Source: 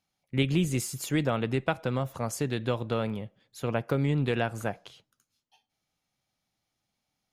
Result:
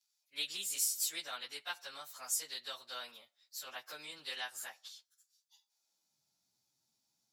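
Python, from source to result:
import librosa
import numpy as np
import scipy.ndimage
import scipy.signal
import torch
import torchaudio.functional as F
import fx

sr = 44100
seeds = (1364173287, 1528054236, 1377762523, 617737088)

y = fx.pitch_bins(x, sr, semitones=1.5)
y = fx.high_shelf_res(y, sr, hz=3500.0, db=8.5, q=1.5)
y = fx.filter_sweep_highpass(y, sr, from_hz=1600.0, to_hz=110.0, start_s=5.58, end_s=6.2, q=0.78)
y = y * 10.0 ** (-2.5 / 20.0)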